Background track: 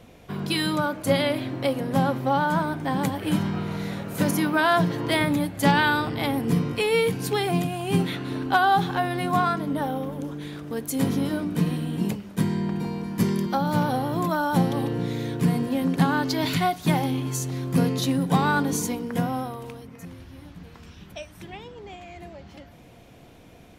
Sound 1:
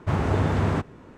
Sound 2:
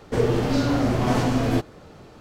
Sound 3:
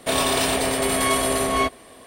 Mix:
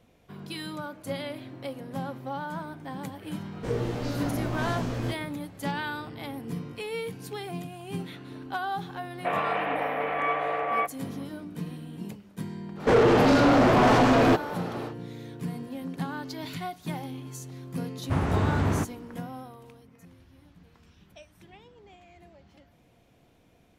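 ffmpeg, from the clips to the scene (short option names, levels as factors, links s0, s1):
-filter_complex "[2:a]asplit=2[s0][s1];[0:a]volume=0.251[s2];[s0]asplit=2[s3][s4];[s4]adelay=17,volume=0.708[s5];[s3][s5]amix=inputs=2:normalize=0[s6];[3:a]highpass=f=400:t=q:w=0.5412,highpass=f=400:t=q:w=1.307,lowpass=f=2400:t=q:w=0.5176,lowpass=f=2400:t=q:w=0.7071,lowpass=f=2400:t=q:w=1.932,afreqshift=52[s7];[s1]asplit=2[s8][s9];[s9]highpass=f=720:p=1,volume=17.8,asoftclip=type=tanh:threshold=0.398[s10];[s8][s10]amix=inputs=2:normalize=0,lowpass=f=1400:p=1,volume=0.501[s11];[1:a]equalizer=f=490:w=4.7:g=-3[s12];[s6]atrim=end=2.2,asetpts=PTS-STARTPTS,volume=0.282,afade=t=in:d=0.004:c=hsin,afade=t=out:st=2.196:d=0.004:c=hsin,adelay=3510[s13];[s7]atrim=end=2.06,asetpts=PTS-STARTPTS,volume=0.631,afade=t=in:d=0.004:c=hsin,afade=t=out:st=2.056:d=0.004:c=hsin,adelay=9180[s14];[s11]atrim=end=2.2,asetpts=PTS-STARTPTS,volume=0.75,afade=t=in:d=0.1,afade=t=out:st=2.1:d=0.1,adelay=12750[s15];[s12]atrim=end=1.17,asetpts=PTS-STARTPTS,volume=0.75,afade=t=in:d=0.004:c=hsin,afade=t=out:st=1.166:d=0.004:c=hsin,adelay=18030[s16];[s2][s13][s14][s15][s16]amix=inputs=5:normalize=0"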